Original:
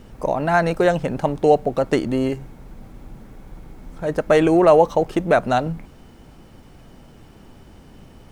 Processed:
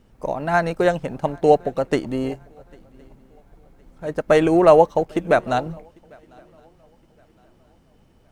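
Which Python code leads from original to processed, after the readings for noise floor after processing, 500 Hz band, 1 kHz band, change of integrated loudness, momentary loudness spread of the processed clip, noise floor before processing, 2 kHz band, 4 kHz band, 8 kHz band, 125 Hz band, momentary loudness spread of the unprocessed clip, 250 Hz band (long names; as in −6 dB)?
−57 dBFS, −0.5 dB, −0.5 dB, −0.5 dB, 16 LU, −47 dBFS, −1.0 dB, −1.5 dB, can't be measured, −3.0 dB, 12 LU, −2.0 dB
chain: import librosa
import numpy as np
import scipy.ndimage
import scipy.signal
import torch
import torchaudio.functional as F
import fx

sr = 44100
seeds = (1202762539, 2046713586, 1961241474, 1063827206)

y = fx.echo_swing(x, sr, ms=1065, ratio=3, feedback_pct=35, wet_db=-20.0)
y = fx.upward_expand(y, sr, threshold_db=-37.0, expansion=1.5)
y = F.gain(torch.from_numpy(y), 1.5).numpy()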